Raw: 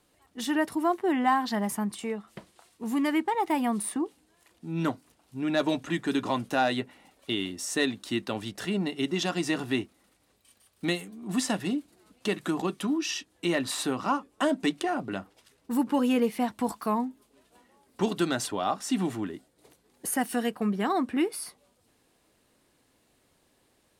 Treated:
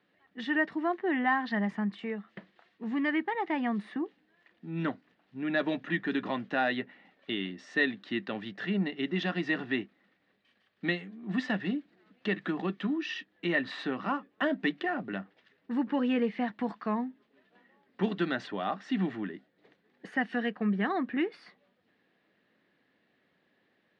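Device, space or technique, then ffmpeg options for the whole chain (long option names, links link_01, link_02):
kitchen radio: -af "highpass=160,equalizer=frequency=190:width_type=q:width=4:gain=7,equalizer=frequency=960:width_type=q:width=4:gain=-4,equalizer=frequency=1800:width_type=q:width=4:gain=10,lowpass=frequency=3700:width=0.5412,lowpass=frequency=3700:width=1.3066,volume=-4dB"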